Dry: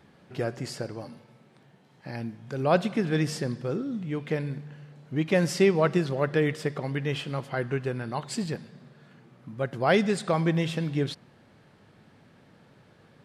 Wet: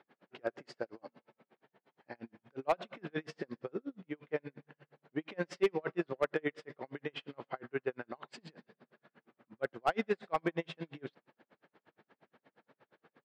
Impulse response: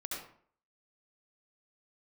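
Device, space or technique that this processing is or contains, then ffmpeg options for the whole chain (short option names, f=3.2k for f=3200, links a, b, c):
helicopter radio: -af "highpass=330,lowpass=2.7k,aeval=exprs='val(0)*pow(10,-40*(0.5-0.5*cos(2*PI*8.5*n/s))/20)':c=same,asoftclip=type=hard:threshold=-21dB"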